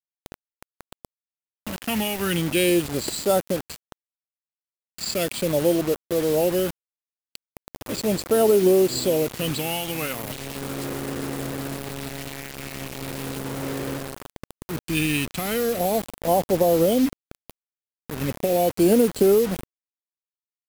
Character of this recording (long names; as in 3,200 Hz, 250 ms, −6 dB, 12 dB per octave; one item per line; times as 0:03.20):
phaser sweep stages 2, 0.38 Hz, lowest notch 530–2,100 Hz
a quantiser's noise floor 6 bits, dither none